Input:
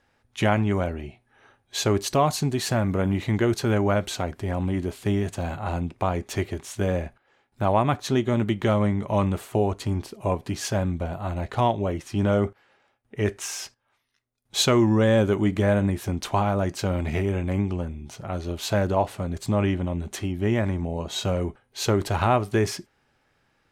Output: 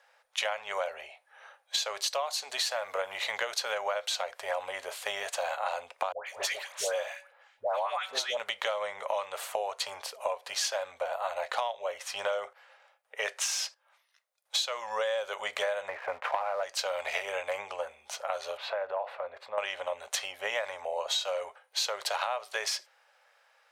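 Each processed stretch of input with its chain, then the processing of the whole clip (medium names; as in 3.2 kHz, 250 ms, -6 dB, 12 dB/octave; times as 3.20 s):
6.12–8.37 s: de-hum 189.1 Hz, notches 21 + phase dispersion highs, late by 145 ms, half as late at 1.1 kHz
15.88–16.63 s: steep low-pass 2.3 kHz + waveshaping leveller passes 1
18.57–19.58 s: band-stop 3.1 kHz, Q 14 + compression, threshold -26 dBFS + distance through air 420 m
whole clip: elliptic high-pass 520 Hz, stop band 40 dB; dynamic bell 4.2 kHz, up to +8 dB, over -47 dBFS, Q 0.96; compression 20:1, threshold -32 dBFS; trim +4.5 dB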